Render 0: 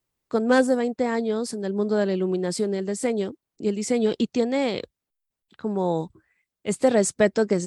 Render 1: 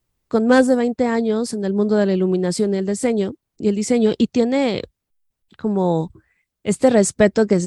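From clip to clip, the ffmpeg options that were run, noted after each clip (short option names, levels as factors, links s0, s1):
-af "lowshelf=f=130:g=11.5,volume=1.58"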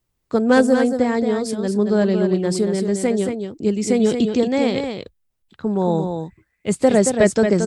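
-af "aecho=1:1:226:0.473,volume=0.891"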